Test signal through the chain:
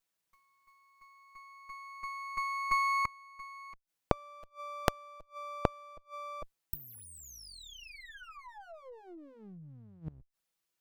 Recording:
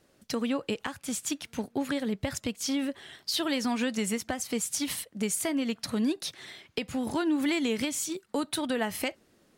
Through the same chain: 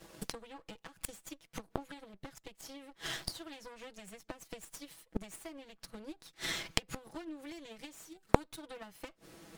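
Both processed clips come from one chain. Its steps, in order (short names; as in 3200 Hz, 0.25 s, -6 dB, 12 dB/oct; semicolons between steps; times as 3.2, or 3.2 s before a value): minimum comb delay 6.1 ms; transient shaper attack +8 dB, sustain 0 dB; flipped gate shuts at -29 dBFS, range -30 dB; gain +10.5 dB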